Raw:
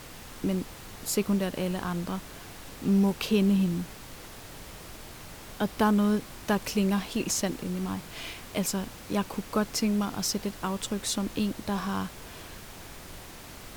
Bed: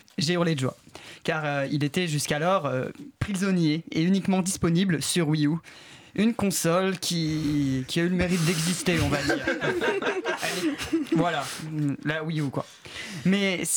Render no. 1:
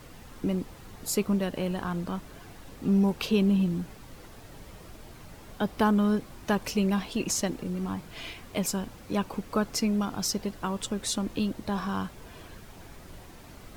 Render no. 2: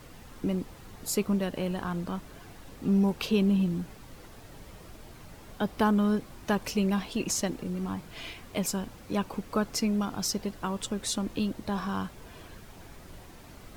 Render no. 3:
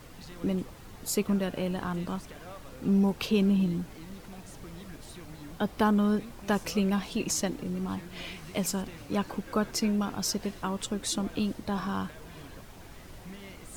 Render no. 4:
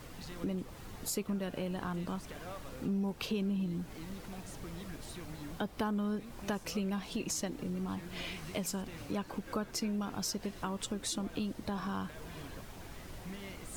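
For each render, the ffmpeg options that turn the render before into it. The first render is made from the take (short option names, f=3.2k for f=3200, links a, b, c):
-af "afftdn=nr=8:nf=-45"
-af "volume=-1dB"
-filter_complex "[1:a]volume=-23.5dB[a];[0:a][a]amix=inputs=2:normalize=0"
-af "acompressor=threshold=-36dB:ratio=2.5"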